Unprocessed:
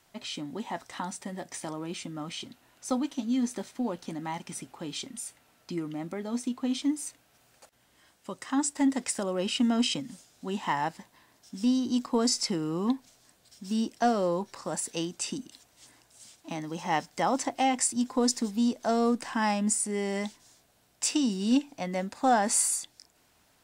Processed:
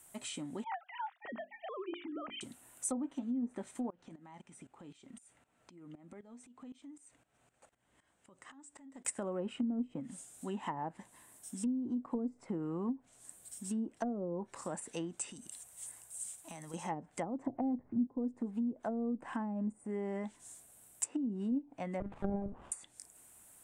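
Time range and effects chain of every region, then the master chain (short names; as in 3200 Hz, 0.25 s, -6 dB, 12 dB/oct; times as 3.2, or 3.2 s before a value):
0.64–2.41 sine-wave speech + notches 50/100/150/200/250/300/350/400 Hz
3.9–9.05 compressor 10:1, threshold -42 dBFS + tremolo saw up 3.9 Hz, depth 85% + air absorption 160 m
15.32–16.74 bell 290 Hz -10.5 dB 0.63 oct + compressor 2.5:1, threshold -44 dBFS
17.46–18.07 LPF 1900 Hz 24 dB/oct + low shelf 320 Hz +11 dB
22–22.72 doubler 42 ms -7.5 dB + monotone LPC vocoder at 8 kHz 200 Hz + running maximum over 17 samples
whole clip: treble ducked by the level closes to 370 Hz, closed at -22.5 dBFS; resonant high shelf 6600 Hz +11 dB, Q 3; compressor 1.5:1, threshold -40 dBFS; gain -2.5 dB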